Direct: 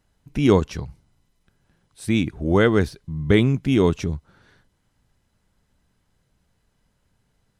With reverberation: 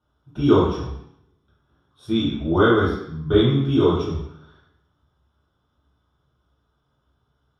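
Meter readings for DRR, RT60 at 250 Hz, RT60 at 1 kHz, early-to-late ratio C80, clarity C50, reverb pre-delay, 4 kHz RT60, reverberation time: −9.5 dB, 0.80 s, 0.75 s, 6.0 dB, 1.5 dB, 3 ms, 0.70 s, 0.70 s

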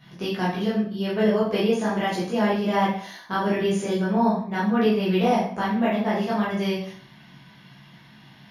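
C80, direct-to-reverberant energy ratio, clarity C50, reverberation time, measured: 8.0 dB, −9.5 dB, 3.0 dB, 0.50 s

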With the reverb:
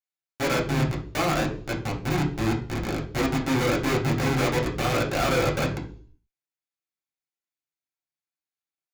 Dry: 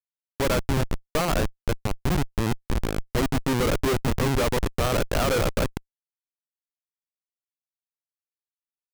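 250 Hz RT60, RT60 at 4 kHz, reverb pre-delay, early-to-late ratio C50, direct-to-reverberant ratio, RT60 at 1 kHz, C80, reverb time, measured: 0.60 s, 0.55 s, 3 ms, 9.5 dB, −3.5 dB, 0.40 s, 14.5 dB, 0.50 s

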